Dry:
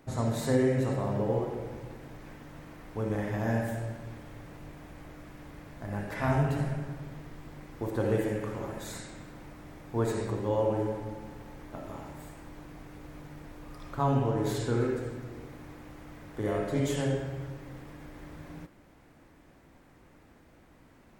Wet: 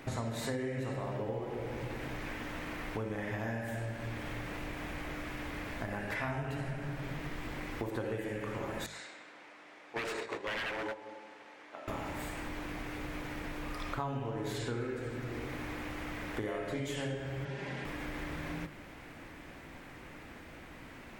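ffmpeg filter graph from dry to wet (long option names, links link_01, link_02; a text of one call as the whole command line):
ffmpeg -i in.wav -filter_complex "[0:a]asettb=1/sr,asplit=3[link_01][link_02][link_03];[link_01]atrim=end=8.864[link_04];[link_02]atrim=start=8.86:end=11.88,asetpts=PTS-STARTPTS,afade=type=in:duration=0.004:curve=qsin,afade=type=out:start_time=3.016:duration=0.004:curve=qsin,agate=range=-11dB:threshold=-33dB:ratio=16:release=100:detection=peak,highpass=460,lowpass=6900,aeval=exprs='0.0224*(abs(mod(val(0)/0.0224+3,4)-2)-1)':channel_layout=same[link_05];[link_03]atrim=start=11.876[link_06];[link_04][link_05]acrossfade=duration=0.004:curve1=hsin:curve2=qsin[link_07];[link_07][link_06]acrossfade=duration=0.004:curve1=qsin:curve2=hsin,asettb=1/sr,asplit=3[link_08][link_09][link_10];[link_08]atrim=end=17.454[link_11];[link_09]atrim=start=17.45:end=17.85,asetpts=PTS-STARTPTS,afade=type=in:duration=0.004:curve=qsin,afade=type=out:start_time=0.396:duration=0.004:curve=qsin,highpass=110,lowpass=6700,bandreject=frequency=1200:width=7,aecho=1:1:5:0.61,atrim=end_sample=17640[link_12];[link_10]atrim=start=17.846[link_13];[link_11][link_12]acrossfade=duration=0.004:curve1=hsin:curve2=qsin[link_14];[link_14][link_13]acrossfade=duration=0.004:curve1=qsin:curve2=hsin,equalizer=frequency=2400:width=0.86:gain=8,bandreject=frequency=50:width_type=h:width=6,bandreject=frequency=100:width_type=h:width=6,bandreject=frequency=150:width_type=h:width=6,bandreject=frequency=200:width_type=h:width=6,acompressor=threshold=-42dB:ratio=6,volume=7dB" out.wav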